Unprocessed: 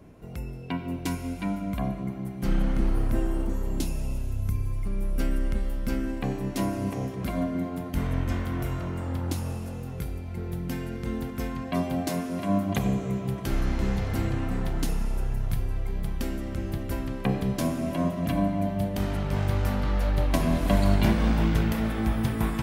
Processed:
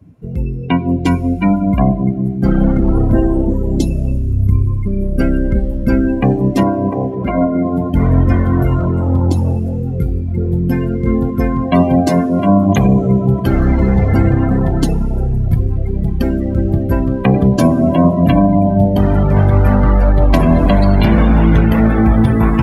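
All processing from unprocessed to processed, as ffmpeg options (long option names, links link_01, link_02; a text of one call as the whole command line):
ffmpeg -i in.wav -filter_complex "[0:a]asettb=1/sr,asplit=3[link_01][link_02][link_03];[link_01]atrim=end=6.634[link_04];[link_02]atrim=start=6.63:end=7.65,asetpts=PTS-STARTPTS,afade=type=in:duration=0.004:curve=qsin,afade=type=out:start_time=1.016:duration=0.004:curve=qsin,acompressor=mode=upward:threshold=-31dB:ratio=2.5:attack=3.2:release=140:knee=2.83:detection=peak,bass=frequency=250:gain=-7,treble=frequency=4000:gain=-12[link_05];[link_03]atrim=start=7.646[link_06];[link_04][link_05]acrossfade=duration=0.004:curve1=hsin:curve2=qsin[link_07];[link_07][link_06]acrossfade=duration=0.004:curve1=qsin:curve2=hsin,highpass=frequency=42:width=0.5412,highpass=frequency=42:width=1.3066,afftdn=noise_reduction=22:noise_floor=-36,alimiter=level_in=18dB:limit=-1dB:release=50:level=0:latency=1,volume=-1dB" out.wav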